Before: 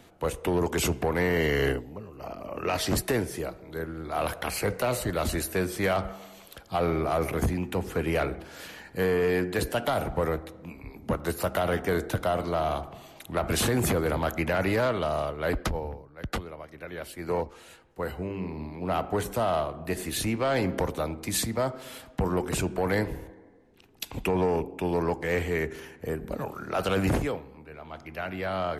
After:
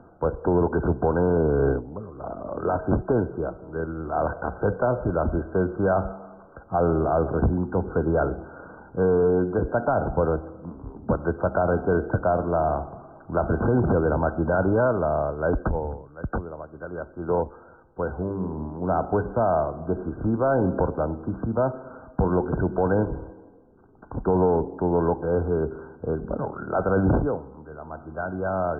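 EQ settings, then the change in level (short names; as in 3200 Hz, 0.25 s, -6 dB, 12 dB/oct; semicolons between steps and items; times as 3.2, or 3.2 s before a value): brick-wall FIR low-pass 1600 Hz; dynamic EQ 1200 Hz, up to -6 dB, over -50 dBFS, Q 5.3; +5.0 dB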